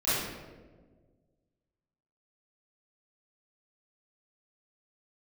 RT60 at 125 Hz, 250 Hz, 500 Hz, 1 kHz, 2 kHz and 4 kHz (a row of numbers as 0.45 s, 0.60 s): 2.1 s, 1.9 s, 1.8 s, 1.1 s, 0.95 s, 0.75 s